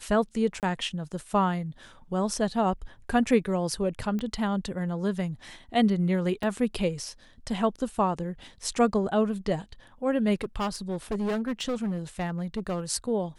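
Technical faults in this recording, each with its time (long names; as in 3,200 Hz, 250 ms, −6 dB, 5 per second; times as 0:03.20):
0:00.60–0:00.63: drop-out 28 ms
0:04.19: click −22 dBFS
0:06.43: drop-out 3.4 ms
0:10.41–0:12.80: clipping −25 dBFS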